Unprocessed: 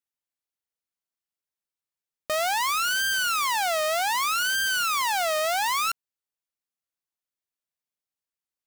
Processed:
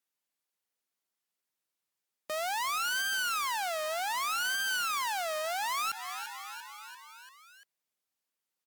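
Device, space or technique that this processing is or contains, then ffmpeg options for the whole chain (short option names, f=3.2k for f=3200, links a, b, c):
podcast mastering chain: -filter_complex "[0:a]highpass=160,asplit=6[a][b][c][d][e][f];[b]adelay=343,afreqshift=55,volume=-20dB[g];[c]adelay=686,afreqshift=110,volume=-24dB[h];[d]adelay=1029,afreqshift=165,volume=-28dB[i];[e]adelay=1372,afreqshift=220,volume=-32dB[j];[f]adelay=1715,afreqshift=275,volume=-36.1dB[k];[a][g][h][i][j][k]amix=inputs=6:normalize=0,highpass=f=93:w=0.5412,highpass=f=93:w=1.3066,deesser=0.35,acompressor=threshold=-33dB:ratio=2.5,alimiter=level_in=5dB:limit=-24dB:level=0:latency=1:release=20,volume=-5dB,volume=4.5dB" -ar 48000 -c:a libmp3lame -b:a 112k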